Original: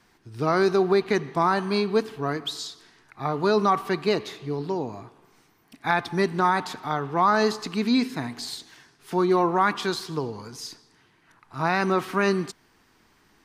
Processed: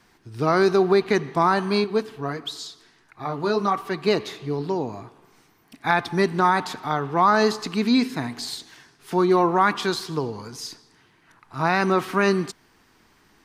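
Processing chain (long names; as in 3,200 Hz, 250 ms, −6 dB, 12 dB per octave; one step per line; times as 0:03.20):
0:01.84–0:04.04: flanger 1.5 Hz, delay 1.7 ms, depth 7.4 ms, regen −46%
level +2.5 dB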